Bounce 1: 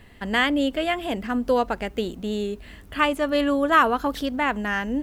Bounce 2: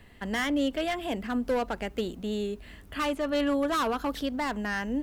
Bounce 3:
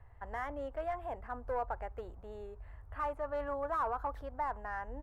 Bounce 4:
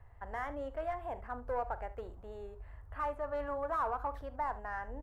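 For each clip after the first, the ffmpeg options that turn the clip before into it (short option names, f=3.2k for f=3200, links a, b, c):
-filter_complex "[0:a]acrossover=split=330|6100[a][b][c];[b]volume=21.5dB,asoftclip=hard,volume=-21.5dB[d];[c]alimiter=level_in=11.5dB:limit=-24dB:level=0:latency=1:release=443,volume=-11.5dB[e];[a][d][e]amix=inputs=3:normalize=0,volume=-4dB"
-af "firequalizer=gain_entry='entry(110,0);entry(190,-27);entry(480,-10);entry(850,-1);entry(3100,-29);entry(9600,-25)':delay=0.05:min_phase=1"
-af "aecho=1:1:41|73:0.158|0.141"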